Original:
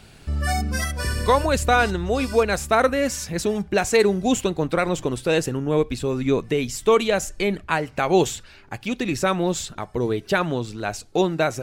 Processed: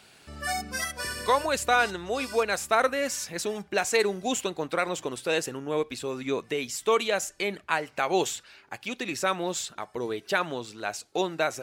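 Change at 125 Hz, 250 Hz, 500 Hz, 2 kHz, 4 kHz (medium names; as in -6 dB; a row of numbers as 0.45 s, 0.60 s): -16.0 dB, -10.5 dB, -7.0 dB, -3.0 dB, -2.5 dB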